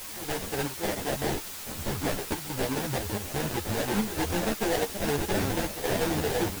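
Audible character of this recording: aliases and images of a low sample rate 1200 Hz, jitter 20%; chopped level 1.2 Hz, depth 65%, duty 80%; a quantiser's noise floor 6-bit, dither triangular; a shimmering, thickened sound

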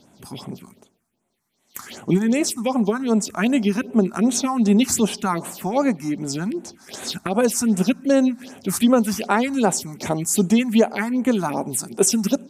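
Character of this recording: phasing stages 4, 2.6 Hz, lowest notch 470–4900 Hz

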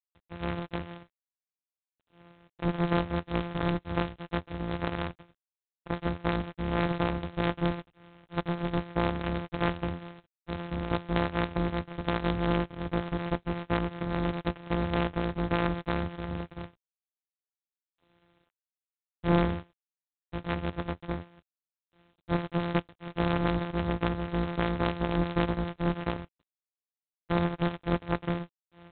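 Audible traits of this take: a buzz of ramps at a fixed pitch in blocks of 256 samples; G.726

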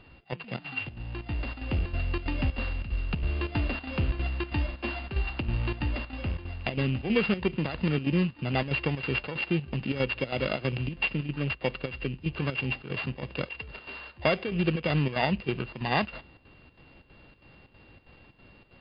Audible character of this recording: a buzz of ramps at a fixed pitch in blocks of 16 samples; chopped level 3.1 Hz, depth 65%, duty 75%; MP3

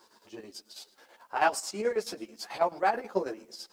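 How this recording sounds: chopped level 9.2 Hz, depth 65%, duty 60%; a quantiser's noise floor 12-bit, dither triangular; a shimmering, thickened sound

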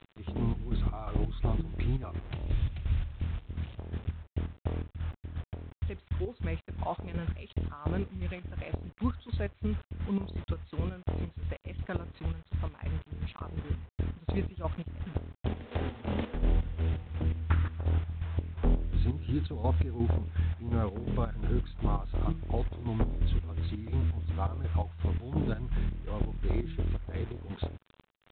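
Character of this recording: a quantiser's noise floor 8-bit, dither none; chopped level 2.8 Hz, depth 65%, duty 50%; G.726

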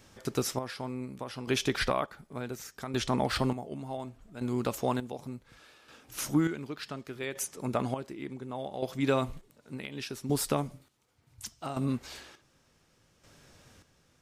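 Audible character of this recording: chopped level 0.68 Hz, depth 65%, duty 40%

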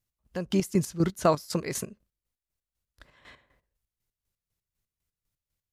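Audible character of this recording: chopped level 4 Hz, depth 65%, duty 40%

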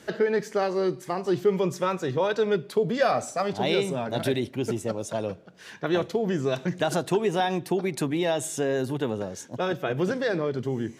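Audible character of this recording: noise floor -47 dBFS; spectral tilt -5.0 dB/oct

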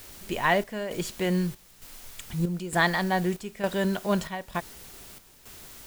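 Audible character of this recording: a quantiser's noise floor 8-bit, dither triangular; chopped level 1.1 Hz, depth 65%, duty 70%

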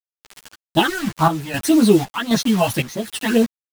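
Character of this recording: phasing stages 12, 1.8 Hz, lowest notch 360–3000 Hz; a quantiser's noise floor 6-bit, dither none; chopped level 1.3 Hz, depth 60%, duty 65%; a shimmering, thickened sound

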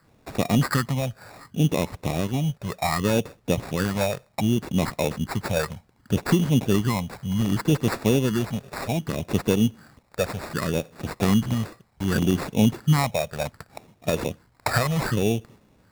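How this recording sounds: phasing stages 6, 0.66 Hz, lowest notch 280–1900 Hz; aliases and images of a low sample rate 3100 Hz, jitter 0%

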